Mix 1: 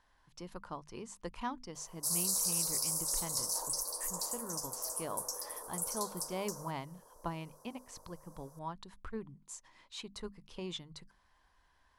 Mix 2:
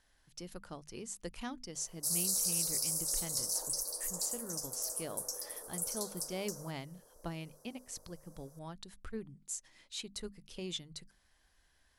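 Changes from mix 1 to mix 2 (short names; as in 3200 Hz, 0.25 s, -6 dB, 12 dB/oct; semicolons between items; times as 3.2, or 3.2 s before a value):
speech: add high shelf 6200 Hz +12 dB; master: add bell 1000 Hz -12.5 dB 0.52 oct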